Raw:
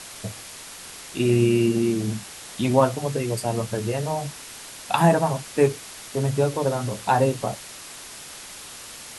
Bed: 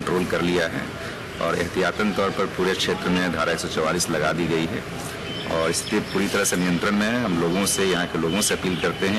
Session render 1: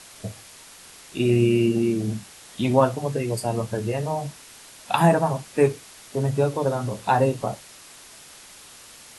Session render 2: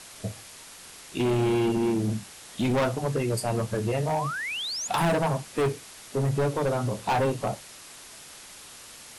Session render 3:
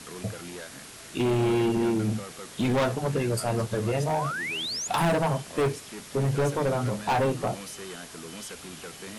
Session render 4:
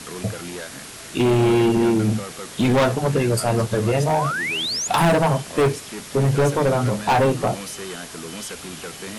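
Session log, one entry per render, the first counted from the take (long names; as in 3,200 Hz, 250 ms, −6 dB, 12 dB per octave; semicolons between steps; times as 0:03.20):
noise reduction from a noise print 6 dB
0:04.07–0:04.88: sound drawn into the spectrogram rise 650–7,200 Hz −32 dBFS; hard clipping −21 dBFS, distortion −7 dB
mix in bed −19.5 dB
level +7 dB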